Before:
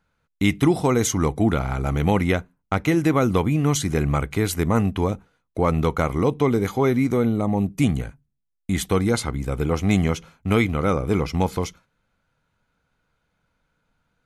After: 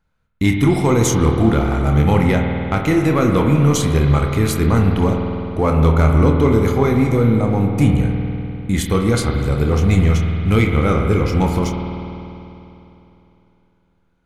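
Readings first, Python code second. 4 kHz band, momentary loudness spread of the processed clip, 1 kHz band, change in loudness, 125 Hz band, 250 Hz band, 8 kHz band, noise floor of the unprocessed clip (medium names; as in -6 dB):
+3.5 dB, 8 LU, +4.0 dB, +5.5 dB, +8.5 dB, +5.0 dB, +3.0 dB, -75 dBFS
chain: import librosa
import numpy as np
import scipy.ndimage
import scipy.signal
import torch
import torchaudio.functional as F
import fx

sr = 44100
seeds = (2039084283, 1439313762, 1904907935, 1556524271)

y = fx.low_shelf(x, sr, hz=100.0, db=9.0)
y = fx.leveller(y, sr, passes=1)
y = fx.doubler(y, sr, ms=27.0, db=-8.0)
y = fx.rev_spring(y, sr, rt60_s=3.1, pass_ms=(50,), chirp_ms=20, drr_db=2.5)
y = y * librosa.db_to_amplitude(-1.5)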